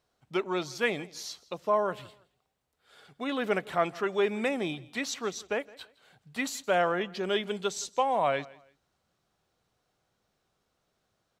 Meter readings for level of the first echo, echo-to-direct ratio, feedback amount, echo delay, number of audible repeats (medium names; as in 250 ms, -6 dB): -22.0 dB, -21.5 dB, 28%, 165 ms, 2